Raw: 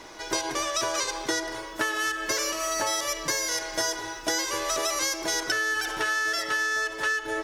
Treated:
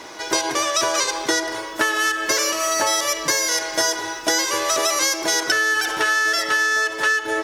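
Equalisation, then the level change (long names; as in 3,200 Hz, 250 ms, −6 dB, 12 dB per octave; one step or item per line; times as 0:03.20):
high-pass filter 170 Hz 6 dB per octave
+7.5 dB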